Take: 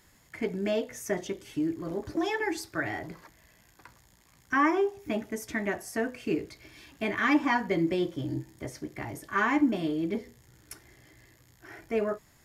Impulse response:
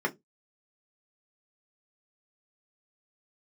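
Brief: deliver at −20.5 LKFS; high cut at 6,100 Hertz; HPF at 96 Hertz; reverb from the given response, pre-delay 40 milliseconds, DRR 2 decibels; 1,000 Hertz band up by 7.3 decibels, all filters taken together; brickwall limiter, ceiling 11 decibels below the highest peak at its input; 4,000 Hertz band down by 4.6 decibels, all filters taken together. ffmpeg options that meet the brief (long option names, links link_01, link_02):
-filter_complex "[0:a]highpass=96,lowpass=6100,equalizer=frequency=1000:width_type=o:gain=9,equalizer=frequency=4000:width_type=o:gain=-6.5,alimiter=limit=-19.5dB:level=0:latency=1,asplit=2[link_01][link_02];[1:a]atrim=start_sample=2205,adelay=40[link_03];[link_02][link_03]afir=irnorm=-1:irlink=0,volume=-11.5dB[link_04];[link_01][link_04]amix=inputs=2:normalize=0,volume=7.5dB"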